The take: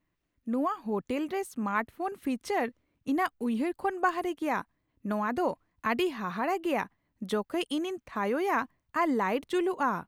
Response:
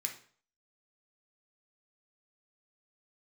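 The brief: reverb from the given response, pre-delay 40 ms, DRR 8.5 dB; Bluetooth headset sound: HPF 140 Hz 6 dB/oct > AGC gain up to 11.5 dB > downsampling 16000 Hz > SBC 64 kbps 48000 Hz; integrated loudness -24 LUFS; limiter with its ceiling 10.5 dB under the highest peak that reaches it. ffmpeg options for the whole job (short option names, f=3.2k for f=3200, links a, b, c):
-filter_complex "[0:a]alimiter=limit=-24dB:level=0:latency=1,asplit=2[a][b];[1:a]atrim=start_sample=2205,adelay=40[c];[b][c]afir=irnorm=-1:irlink=0,volume=-9dB[d];[a][d]amix=inputs=2:normalize=0,highpass=f=140:p=1,dynaudnorm=m=11.5dB,aresample=16000,aresample=44100,volume=10dB" -ar 48000 -c:a sbc -b:a 64k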